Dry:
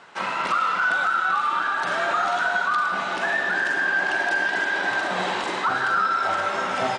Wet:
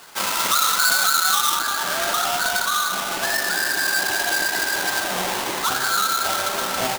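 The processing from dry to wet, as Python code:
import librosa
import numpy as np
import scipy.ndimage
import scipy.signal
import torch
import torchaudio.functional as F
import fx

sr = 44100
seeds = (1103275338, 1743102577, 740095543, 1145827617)

y = fx.halfwave_hold(x, sr)
y = fx.high_shelf(y, sr, hz=2300.0, db=fx.steps((0.0, 11.5), (1.54, 6.5)))
y = F.gain(torch.from_numpy(y), -5.0).numpy()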